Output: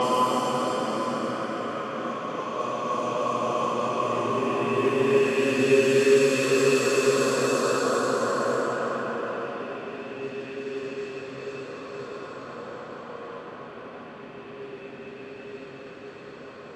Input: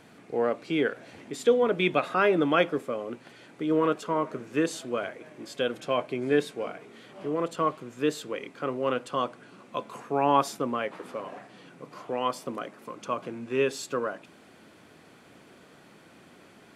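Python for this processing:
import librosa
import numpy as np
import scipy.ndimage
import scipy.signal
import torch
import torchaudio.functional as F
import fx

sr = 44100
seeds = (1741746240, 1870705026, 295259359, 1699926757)

y = fx.echo_feedback(x, sr, ms=966, feedback_pct=50, wet_db=-14.5)
y = fx.paulstretch(y, sr, seeds[0], factor=4.8, window_s=1.0, from_s=12.35)
y = fx.env_lowpass(y, sr, base_hz=2700.0, full_db=-26.5)
y = y * 10.0 ** (7.5 / 20.0)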